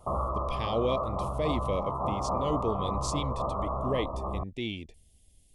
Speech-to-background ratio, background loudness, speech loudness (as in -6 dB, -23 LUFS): -2.0 dB, -32.5 LUFS, -34.5 LUFS